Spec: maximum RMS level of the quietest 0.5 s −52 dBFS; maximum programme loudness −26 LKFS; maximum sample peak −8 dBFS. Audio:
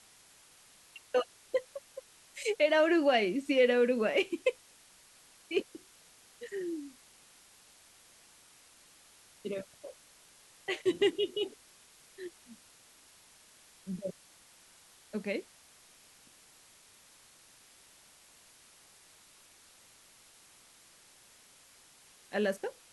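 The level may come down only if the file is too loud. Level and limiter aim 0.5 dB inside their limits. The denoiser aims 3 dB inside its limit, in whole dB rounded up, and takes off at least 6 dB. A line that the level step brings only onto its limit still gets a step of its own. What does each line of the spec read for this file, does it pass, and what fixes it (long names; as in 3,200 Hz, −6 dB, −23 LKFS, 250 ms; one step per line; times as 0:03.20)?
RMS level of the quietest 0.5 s −60 dBFS: in spec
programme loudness −32.0 LKFS: in spec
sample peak −15.5 dBFS: in spec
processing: no processing needed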